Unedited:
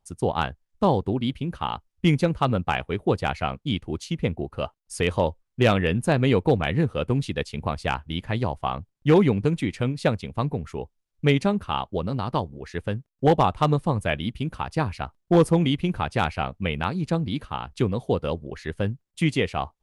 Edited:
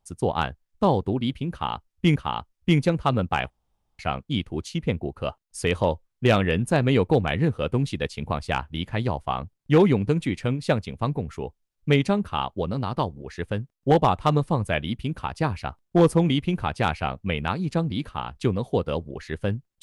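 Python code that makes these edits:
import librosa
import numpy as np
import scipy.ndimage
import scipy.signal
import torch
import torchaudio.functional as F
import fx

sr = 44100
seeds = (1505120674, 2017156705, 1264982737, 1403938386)

y = fx.edit(x, sr, fx.repeat(start_s=1.52, length_s=0.64, count=2),
    fx.room_tone_fill(start_s=2.86, length_s=0.49), tone=tone)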